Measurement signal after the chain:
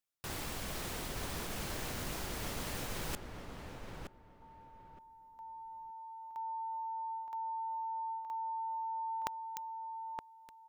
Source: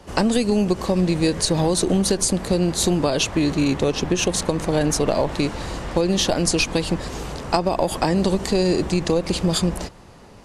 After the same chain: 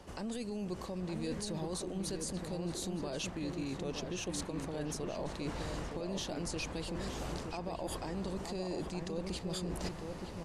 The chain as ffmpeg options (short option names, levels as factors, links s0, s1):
-filter_complex "[0:a]alimiter=limit=0.2:level=0:latency=1:release=42,areverse,acompressor=threshold=0.0178:ratio=12,areverse,asplit=2[s0][s1];[s1]adelay=919,lowpass=f=1600:p=1,volume=0.596,asplit=2[s2][s3];[s3]adelay=919,lowpass=f=1600:p=1,volume=0.22,asplit=2[s4][s5];[s5]adelay=919,lowpass=f=1600:p=1,volume=0.22[s6];[s0][s2][s4][s6]amix=inputs=4:normalize=0,volume=0.841"